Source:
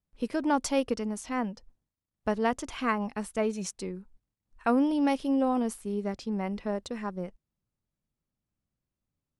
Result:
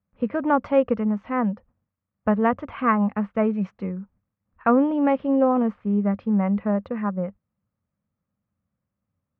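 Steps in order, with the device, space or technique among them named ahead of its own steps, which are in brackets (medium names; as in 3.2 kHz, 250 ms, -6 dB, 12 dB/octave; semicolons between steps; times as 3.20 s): bass cabinet (cabinet simulation 65–2200 Hz, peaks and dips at 93 Hz +8 dB, 200 Hz +8 dB, 370 Hz -7 dB, 530 Hz +6 dB, 1.2 kHz +6 dB); trim +4.5 dB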